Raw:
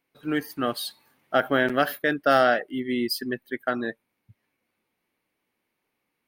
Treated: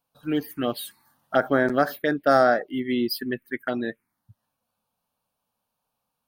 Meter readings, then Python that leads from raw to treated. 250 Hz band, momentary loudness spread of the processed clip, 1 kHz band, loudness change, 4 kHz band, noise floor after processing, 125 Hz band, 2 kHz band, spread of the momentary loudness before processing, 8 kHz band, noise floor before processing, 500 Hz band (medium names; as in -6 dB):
+2.0 dB, 12 LU, +0.5 dB, +1.0 dB, -3.0 dB, -81 dBFS, +2.5 dB, -2.0 dB, 11 LU, no reading, -80 dBFS, +1.5 dB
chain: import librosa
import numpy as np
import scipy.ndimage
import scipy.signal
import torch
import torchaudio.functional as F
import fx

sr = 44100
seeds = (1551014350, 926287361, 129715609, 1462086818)

y = fx.env_phaser(x, sr, low_hz=350.0, high_hz=2900.0, full_db=-19.0)
y = y * 10.0 ** (2.5 / 20.0)